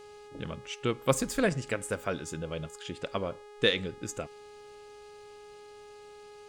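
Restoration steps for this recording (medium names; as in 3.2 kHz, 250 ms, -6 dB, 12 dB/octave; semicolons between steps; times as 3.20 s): de-hum 415.8 Hz, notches 27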